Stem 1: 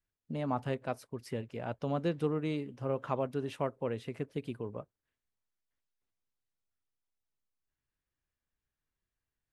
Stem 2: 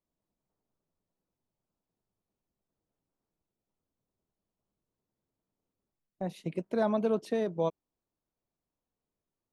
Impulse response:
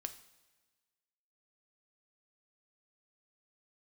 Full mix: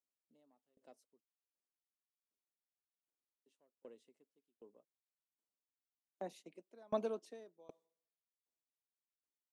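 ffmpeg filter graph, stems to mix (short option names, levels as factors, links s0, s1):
-filter_complex "[0:a]equalizer=f=1500:w=0.98:g=-10.5,bandreject=f=2400:w=14,asoftclip=type=tanh:threshold=0.0708,volume=0.158,asplit=3[s0][s1][s2];[s0]atrim=end=1.21,asetpts=PTS-STARTPTS,afade=t=out:st=1.206:d=0.004:c=hsin[s3];[s1]atrim=start=1.21:end=3.46,asetpts=PTS-STARTPTS,volume=0[s4];[s2]atrim=start=3.46,asetpts=PTS-STARTPTS,afade=t=in:d=0.004:c=hsin[s5];[s3][s4][s5]concat=n=3:v=0:a=1[s6];[1:a]agate=range=0.398:threshold=0.00398:ratio=16:detection=peak,volume=0.631,asplit=2[s7][s8];[s8]volume=0.0841[s9];[2:a]atrim=start_sample=2205[s10];[s9][s10]afir=irnorm=-1:irlink=0[s11];[s6][s7][s11]amix=inputs=3:normalize=0,highpass=f=250:w=0.5412,highpass=f=250:w=1.3066,equalizer=f=7100:w=1.1:g=8.5,aeval=exprs='val(0)*pow(10,-32*if(lt(mod(1.3*n/s,1),2*abs(1.3)/1000),1-mod(1.3*n/s,1)/(2*abs(1.3)/1000),(mod(1.3*n/s,1)-2*abs(1.3)/1000)/(1-2*abs(1.3)/1000))/20)':c=same"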